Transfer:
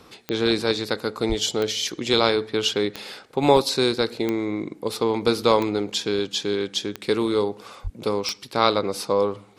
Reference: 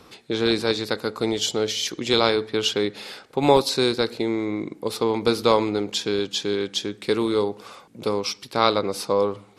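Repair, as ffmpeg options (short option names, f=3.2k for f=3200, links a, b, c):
-filter_complex "[0:a]adeclick=t=4,asplit=3[a][b][c];[a]afade=t=out:st=1.28:d=0.02[d];[b]highpass=f=140:w=0.5412,highpass=f=140:w=1.3066,afade=t=in:st=1.28:d=0.02,afade=t=out:st=1.4:d=0.02[e];[c]afade=t=in:st=1.4:d=0.02[f];[d][e][f]amix=inputs=3:normalize=0,asplit=3[g][h][i];[g]afade=t=out:st=7.83:d=0.02[j];[h]highpass=f=140:w=0.5412,highpass=f=140:w=1.3066,afade=t=in:st=7.83:d=0.02,afade=t=out:st=7.95:d=0.02[k];[i]afade=t=in:st=7.95:d=0.02[l];[j][k][l]amix=inputs=3:normalize=0"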